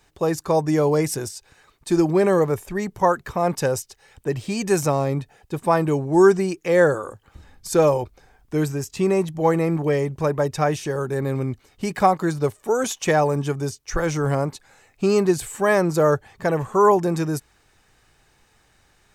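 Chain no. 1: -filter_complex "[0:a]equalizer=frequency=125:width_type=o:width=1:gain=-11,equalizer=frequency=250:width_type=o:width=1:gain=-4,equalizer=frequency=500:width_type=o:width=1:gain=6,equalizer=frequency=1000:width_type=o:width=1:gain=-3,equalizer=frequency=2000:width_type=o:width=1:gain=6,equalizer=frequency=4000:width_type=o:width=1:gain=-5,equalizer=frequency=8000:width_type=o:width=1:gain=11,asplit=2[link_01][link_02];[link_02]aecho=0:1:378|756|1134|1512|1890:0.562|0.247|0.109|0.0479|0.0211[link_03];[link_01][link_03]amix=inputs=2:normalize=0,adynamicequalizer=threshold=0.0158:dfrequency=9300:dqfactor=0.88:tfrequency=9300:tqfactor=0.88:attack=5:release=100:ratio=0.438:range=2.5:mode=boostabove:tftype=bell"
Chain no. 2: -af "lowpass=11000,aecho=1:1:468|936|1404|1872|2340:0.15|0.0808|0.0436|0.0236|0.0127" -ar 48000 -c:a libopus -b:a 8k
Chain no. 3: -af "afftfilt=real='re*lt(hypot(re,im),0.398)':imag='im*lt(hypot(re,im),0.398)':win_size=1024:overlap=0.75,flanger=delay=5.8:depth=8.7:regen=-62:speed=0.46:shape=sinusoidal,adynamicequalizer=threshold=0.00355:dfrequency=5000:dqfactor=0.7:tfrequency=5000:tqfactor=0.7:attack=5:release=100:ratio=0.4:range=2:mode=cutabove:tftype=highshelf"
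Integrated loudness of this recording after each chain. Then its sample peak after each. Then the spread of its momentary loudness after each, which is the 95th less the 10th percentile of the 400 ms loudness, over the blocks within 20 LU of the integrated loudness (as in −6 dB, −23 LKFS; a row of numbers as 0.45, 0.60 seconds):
−18.5, −22.5, −35.0 LKFS; −1.0, −4.5, −16.5 dBFS; 9, 14, 9 LU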